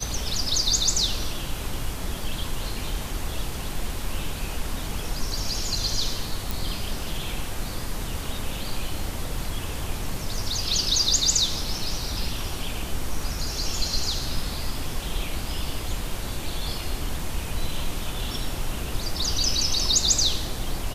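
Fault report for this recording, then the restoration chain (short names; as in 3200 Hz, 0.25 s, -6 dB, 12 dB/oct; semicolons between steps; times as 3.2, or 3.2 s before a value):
6.51 pop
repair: de-click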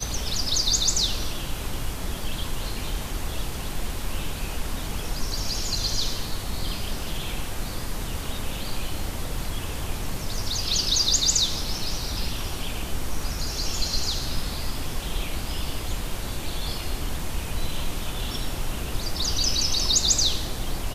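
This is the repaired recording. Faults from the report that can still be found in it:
none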